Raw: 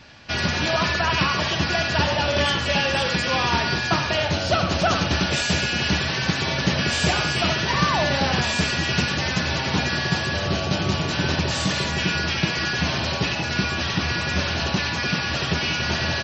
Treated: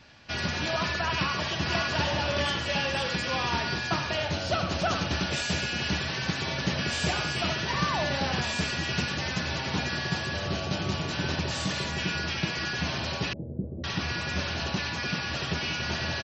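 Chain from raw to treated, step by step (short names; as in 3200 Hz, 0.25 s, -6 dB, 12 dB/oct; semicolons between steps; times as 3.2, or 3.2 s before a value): 1.11–1.66 echo throw 0.54 s, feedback 55%, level -4.5 dB; 13.33–13.84 elliptic low-pass 530 Hz, stop band 80 dB; gain -7 dB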